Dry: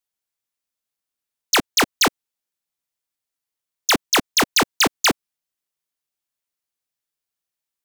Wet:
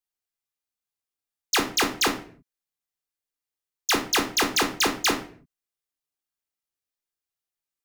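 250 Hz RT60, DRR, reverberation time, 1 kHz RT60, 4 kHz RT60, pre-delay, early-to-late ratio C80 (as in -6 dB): no reading, 4.0 dB, 0.50 s, 0.40 s, 0.35 s, 3 ms, 15.0 dB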